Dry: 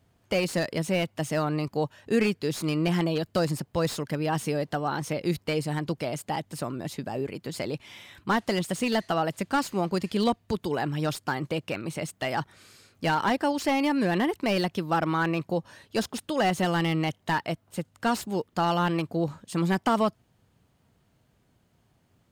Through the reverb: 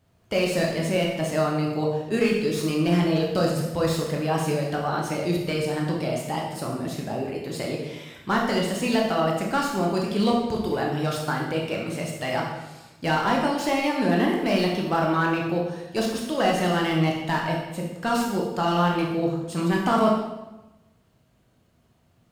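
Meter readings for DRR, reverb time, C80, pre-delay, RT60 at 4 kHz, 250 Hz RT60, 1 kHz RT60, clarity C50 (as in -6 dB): -2.0 dB, 1.0 s, 5.5 dB, 15 ms, 0.85 s, 1.3 s, 1.0 s, 2.5 dB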